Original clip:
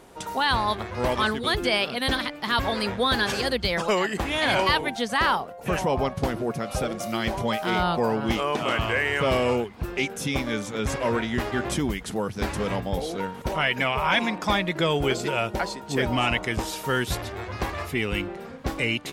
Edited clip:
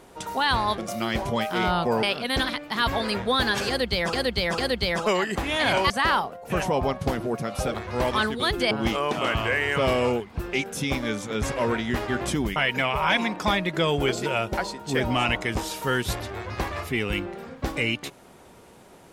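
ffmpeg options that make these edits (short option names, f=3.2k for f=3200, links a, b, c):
-filter_complex "[0:a]asplit=9[a][b][c][d][e][f][g][h][i];[a]atrim=end=0.782[j];[b]atrim=start=6.898:end=8.152[k];[c]atrim=start=1.748:end=3.852[l];[d]atrim=start=3.398:end=3.852[m];[e]atrim=start=3.398:end=4.722[n];[f]atrim=start=5.058:end=6.902[o];[g]atrim=start=0.778:end=1.752[p];[h]atrim=start=8.148:end=12.002[q];[i]atrim=start=13.578[r];[j][k]acrossfade=d=0.004:c1=hsin:c2=hsin[s];[s][l]acrossfade=d=0.004:c1=hsin:c2=hsin[t];[t][m]acrossfade=d=0.004:c1=hsin:c2=hsin[u];[u][n]acrossfade=d=0.004:c1=hsin:c2=hsin[v];[v][o]acrossfade=d=0.004:c1=hsin:c2=hsin[w];[w][p]acrossfade=d=0.004:c1=hsin:c2=hsin[x];[x][q]acrossfade=d=0.004:c1=hsin:c2=hsin[y];[y][r]acrossfade=d=0.004:c1=hsin:c2=hsin"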